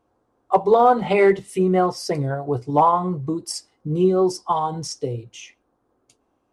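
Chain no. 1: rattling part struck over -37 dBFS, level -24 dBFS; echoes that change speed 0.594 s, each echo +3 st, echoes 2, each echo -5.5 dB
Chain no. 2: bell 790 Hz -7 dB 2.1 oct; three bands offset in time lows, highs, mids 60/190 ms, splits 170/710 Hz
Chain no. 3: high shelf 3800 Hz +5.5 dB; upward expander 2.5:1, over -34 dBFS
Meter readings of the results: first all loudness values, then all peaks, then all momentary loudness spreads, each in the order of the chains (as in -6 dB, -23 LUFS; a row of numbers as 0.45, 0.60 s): -19.0, -26.0, -23.5 LUFS; -3.5, -9.5, -5.0 dBFS; 11, 11, 23 LU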